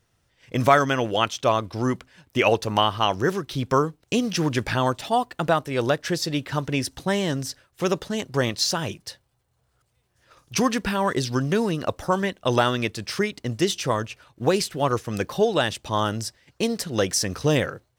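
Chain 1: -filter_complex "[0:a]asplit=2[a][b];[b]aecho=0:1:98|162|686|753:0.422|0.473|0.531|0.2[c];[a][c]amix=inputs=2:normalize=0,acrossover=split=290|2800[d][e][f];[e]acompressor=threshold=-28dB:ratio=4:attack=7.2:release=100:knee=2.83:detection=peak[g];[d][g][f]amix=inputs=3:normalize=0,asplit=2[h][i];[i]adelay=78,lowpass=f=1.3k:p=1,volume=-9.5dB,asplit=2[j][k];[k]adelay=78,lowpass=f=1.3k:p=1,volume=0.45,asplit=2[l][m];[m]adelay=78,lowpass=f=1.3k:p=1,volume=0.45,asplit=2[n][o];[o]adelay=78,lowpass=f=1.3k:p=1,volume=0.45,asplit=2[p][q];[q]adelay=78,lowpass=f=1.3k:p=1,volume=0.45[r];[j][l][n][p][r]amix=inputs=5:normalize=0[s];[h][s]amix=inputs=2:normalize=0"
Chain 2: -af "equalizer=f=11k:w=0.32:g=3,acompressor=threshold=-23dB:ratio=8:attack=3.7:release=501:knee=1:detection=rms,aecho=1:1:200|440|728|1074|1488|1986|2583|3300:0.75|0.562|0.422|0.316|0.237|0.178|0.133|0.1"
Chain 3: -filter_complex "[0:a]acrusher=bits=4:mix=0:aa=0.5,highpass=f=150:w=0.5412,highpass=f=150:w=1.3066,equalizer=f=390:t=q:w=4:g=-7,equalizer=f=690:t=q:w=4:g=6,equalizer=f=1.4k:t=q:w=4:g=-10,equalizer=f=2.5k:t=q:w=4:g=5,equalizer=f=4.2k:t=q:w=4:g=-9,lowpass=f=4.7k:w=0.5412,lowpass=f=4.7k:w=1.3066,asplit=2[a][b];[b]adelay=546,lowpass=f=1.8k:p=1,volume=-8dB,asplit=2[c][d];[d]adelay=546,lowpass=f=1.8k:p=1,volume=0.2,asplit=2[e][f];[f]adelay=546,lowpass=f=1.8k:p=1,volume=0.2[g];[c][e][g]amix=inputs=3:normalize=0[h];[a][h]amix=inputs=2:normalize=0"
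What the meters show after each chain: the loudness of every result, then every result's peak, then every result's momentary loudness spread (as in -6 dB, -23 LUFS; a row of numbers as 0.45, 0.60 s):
-24.5, -28.5, -24.0 LUFS; -8.5, -12.0, -1.5 dBFS; 5, 3, 8 LU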